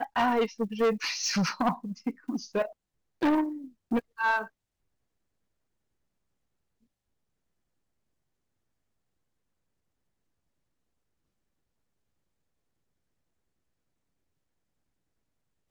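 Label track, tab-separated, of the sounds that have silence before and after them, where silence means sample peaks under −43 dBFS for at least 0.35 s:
3.210000	4.470000	sound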